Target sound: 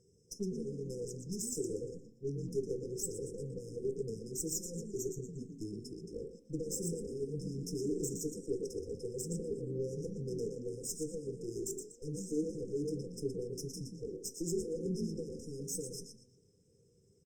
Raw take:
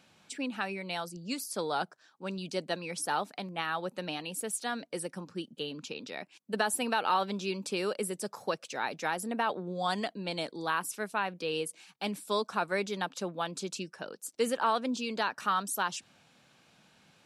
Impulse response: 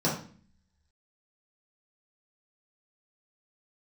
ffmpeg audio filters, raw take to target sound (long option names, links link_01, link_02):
-filter_complex "[0:a]aecho=1:1:1.4:0.74,asplit=5[link_01][link_02][link_03][link_04][link_05];[link_02]adelay=118,afreqshift=55,volume=-7dB[link_06];[link_03]adelay=236,afreqshift=110,volume=-16.9dB[link_07];[link_04]adelay=354,afreqshift=165,volume=-26.8dB[link_08];[link_05]adelay=472,afreqshift=220,volume=-36.7dB[link_09];[link_01][link_06][link_07][link_08][link_09]amix=inputs=5:normalize=0,alimiter=limit=-22dB:level=0:latency=1:release=72,asetrate=32097,aresample=44100,atempo=1.37395,aeval=exprs='(tanh(44.7*val(0)+0.8)-tanh(0.8))/44.7':channel_layout=same,asplit=2[link_10][link_11];[1:a]atrim=start_sample=2205,asetrate=74970,aresample=44100,highshelf=frequency=3100:gain=5[link_12];[link_11][link_12]afir=irnorm=-1:irlink=0,volume=-14.5dB[link_13];[link_10][link_13]amix=inputs=2:normalize=0,afftfilt=real='re*(1-between(b*sr/4096,520,5000))':imag='im*(1-between(b*sr/4096,520,5000))':win_size=4096:overlap=0.75,volume=2dB" -ar 48000 -c:a libopus -b:a 48k